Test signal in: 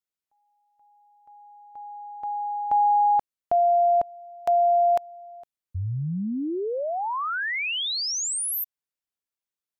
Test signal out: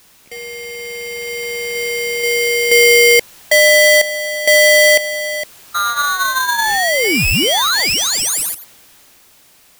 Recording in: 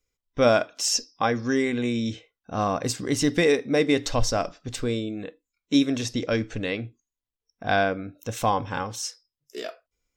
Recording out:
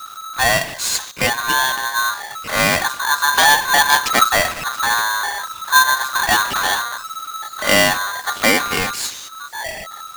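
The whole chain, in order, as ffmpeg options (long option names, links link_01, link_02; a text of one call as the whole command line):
ffmpeg -i in.wav -af "aeval=exprs='val(0)+0.5*0.0631*sgn(val(0))':channel_layout=same,bandreject=frequency=60:width_type=h:width=6,bandreject=frequency=120:width_type=h:width=6,bandreject=frequency=180:width_type=h:width=6,bandreject=frequency=240:width_type=h:width=6,bandreject=frequency=300:width_type=h:width=6,bandreject=frequency=360:width_type=h:width=6,afwtdn=0.0355,equalizer=frequency=1500:width_type=o:width=2.4:gain=2.5,dynaudnorm=framelen=120:gausssize=21:maxgain=7dB,acrusher=bits=5:mode=log:mix=0:aa=0.000001,aeval=exprs='val(0)*sgn(sin(2*PI*1300*n/s))':channel_layout=same" out.wav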